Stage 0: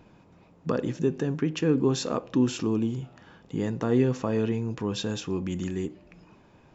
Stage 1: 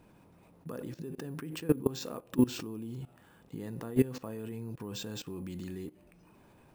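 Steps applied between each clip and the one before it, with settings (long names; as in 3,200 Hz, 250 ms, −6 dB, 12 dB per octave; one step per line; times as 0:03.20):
output level in coarse steps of 20 dB
decimation without filtering 4×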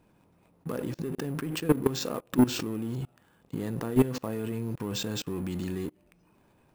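leveller curve on the samples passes 2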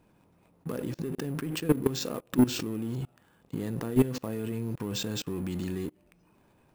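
dynamic equaliser 990 Hz, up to −4 dB, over −40 dBFS, Q 0.8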